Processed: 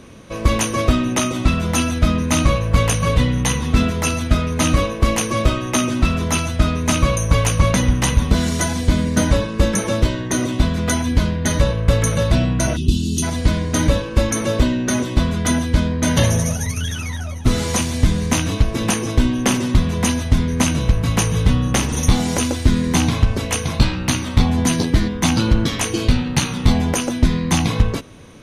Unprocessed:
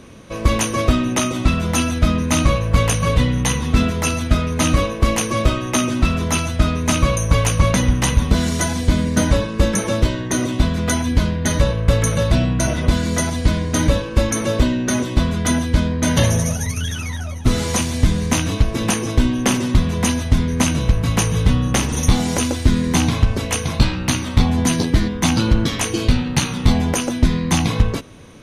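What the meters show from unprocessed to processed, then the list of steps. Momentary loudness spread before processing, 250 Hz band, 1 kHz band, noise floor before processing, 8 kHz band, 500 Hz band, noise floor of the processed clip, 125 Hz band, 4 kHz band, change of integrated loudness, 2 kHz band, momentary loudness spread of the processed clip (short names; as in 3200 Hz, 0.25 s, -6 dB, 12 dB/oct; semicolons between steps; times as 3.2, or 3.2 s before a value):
3 LU, 0.0 dB, 0.0 dB, -27 dBFS, 0.0 dB, 0.0 dB, -27 dBFS, 0.0 dB, 0.0 dB, 0.0 dB, 0.0 dB, 3 LU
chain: spectral gain 12.76–13.23, 450–2500 Hz -29 dB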